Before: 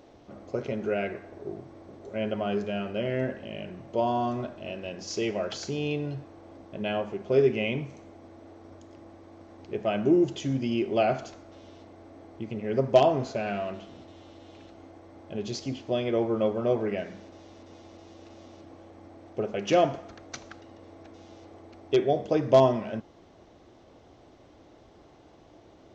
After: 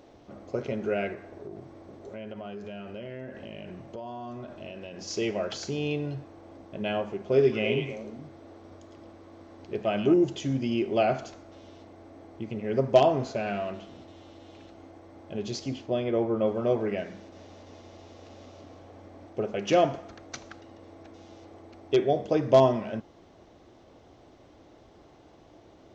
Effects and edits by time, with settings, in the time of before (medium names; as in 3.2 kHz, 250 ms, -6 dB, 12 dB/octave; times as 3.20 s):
1.14–5.06 s: compression, threshold -36 dBFS
7.27–10.14 s: repeats whose band climbs or falls 108 ms, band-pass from 3.8 kHz, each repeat -1.4 oct, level -1 dB
15.86–16.48 s: treble shelf 2.9 kHz -8 dB
17.18–19.26 s: delay 176 ms -4.5 dB